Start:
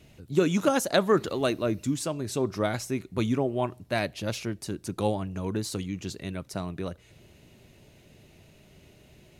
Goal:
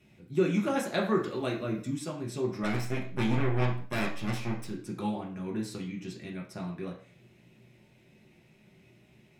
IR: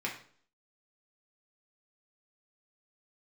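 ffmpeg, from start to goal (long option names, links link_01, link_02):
-filter_complex "[0:a]asplit=3[link_01][link_02][link_03];[link_01]afade=type=out:start_time=2.63:duration=0.02[link_04];[link_02]aeval=exprs='0.224*(cos(1*acos(clip(val(0)/0.224,-1,1)))-cos(1*PI/2))+0.0562*(cos(8*acos(clip(val(0)/0.224,-1,1)))-cos(8*PI/2))':channel_layout=same,afade=type=in:start_time=2.63:duration=0.02,afade=type=out:start_time=4.64:duration=0.02[link_05];[link_03]afade=type=in:start_time=4.64:duration=0.02[link_06];[link_04][link_05][link_06]amix=inputs=3:normalize=0[link_07];[1:a]atrim=start_sample=2205,afade=type=out:start_time=0.3:duration=0.01,atrim=end_sample=13671[link_08];[link_07][link_08]afir=irnorm=-1:irlink=0,volume=-8.5dB"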